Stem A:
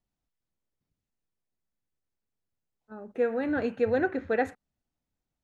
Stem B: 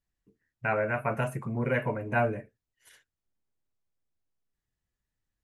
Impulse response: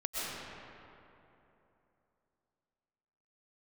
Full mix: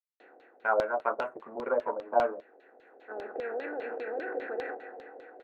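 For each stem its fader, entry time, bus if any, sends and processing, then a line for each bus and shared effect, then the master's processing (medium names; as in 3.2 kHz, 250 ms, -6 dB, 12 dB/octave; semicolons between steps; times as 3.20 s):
-10.0 dB, 0.20 s, send -12 dB, spectral levelling over time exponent 0.4; peak limiter -21 dBFS, peak gain reduction 11 dB; auto duck -7 dB, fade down 0.40 s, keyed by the second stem
+2.0 dB, 0.00 s, no send, power-law waveshaper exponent 1.4; high-order bell 3 kHz -14.5 dB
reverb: on, RT60 3.1 s, pre-delay 85 ms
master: high-pass 330 Hz 24 dB/octave; LFO low-pass saw down 5 Hz 520–4000 Hz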